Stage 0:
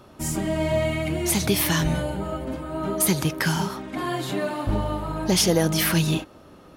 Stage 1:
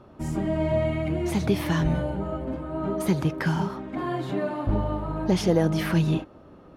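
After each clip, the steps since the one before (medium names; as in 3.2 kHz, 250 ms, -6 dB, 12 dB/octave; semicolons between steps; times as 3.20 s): low-pass 1.1 kHz 6 dB/octave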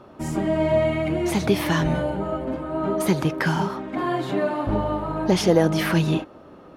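bass shelf 160 Hz -10.5 dB; trim +6 dB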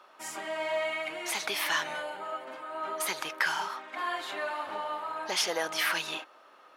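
high-pass 1.2 kHz 12 dB/octave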